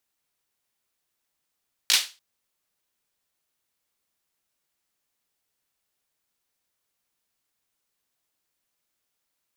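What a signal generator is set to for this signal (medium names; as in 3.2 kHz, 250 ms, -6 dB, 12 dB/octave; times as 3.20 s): hand clap length 0.29 s, bursts 3, apart 17 ms, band 3.8 kHz, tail 0.29 s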